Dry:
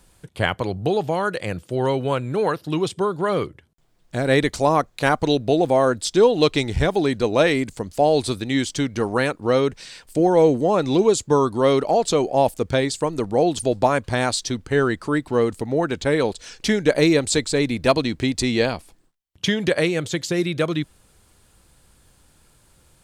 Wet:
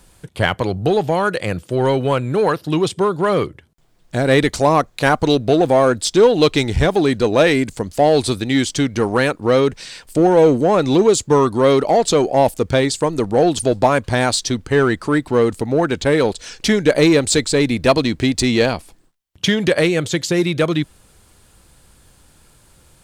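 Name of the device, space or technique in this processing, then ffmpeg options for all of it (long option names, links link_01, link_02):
parallel distortion: -filter_complex "[0:a]asplit=2[link_01][link_02];[link_02]asoftclip=type=hard:threshold=-18dB,volume=-5dB[link_03];[link_01][link_03]amix=inputs=2:normalize=0,volume=1.5dB"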